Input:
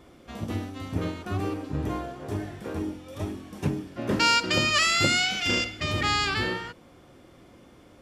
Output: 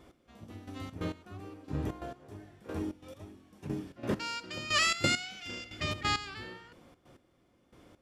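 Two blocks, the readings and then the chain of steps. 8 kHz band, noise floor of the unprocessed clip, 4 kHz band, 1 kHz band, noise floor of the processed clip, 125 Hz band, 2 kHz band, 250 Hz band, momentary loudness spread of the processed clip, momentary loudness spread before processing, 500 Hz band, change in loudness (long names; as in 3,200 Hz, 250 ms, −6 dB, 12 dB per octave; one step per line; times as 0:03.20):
−7.5 dB, −53 dBFS, −9.0 dB, −9.0 dB, −69 dBFS, −9.0 dB, −9.0 dB, −8.5 dB, 22 LU, 15 LU, −8.5 dB, −7.5 dB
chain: gate pattern "x.....xx." 134 BPM −12 dB
level −4.5 dB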